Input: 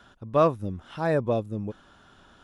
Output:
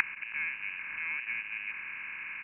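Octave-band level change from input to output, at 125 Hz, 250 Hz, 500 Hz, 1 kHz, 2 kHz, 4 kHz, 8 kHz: under -30 dB, under -30 dB, under -40 dB, -18.0 dB, +9.5 dB, -2.5 dB, n/a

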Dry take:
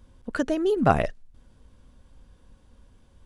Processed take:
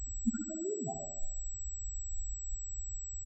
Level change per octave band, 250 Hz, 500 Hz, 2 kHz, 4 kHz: -10.0 dB, -16.0 dB, under -25 dB, under -40 dB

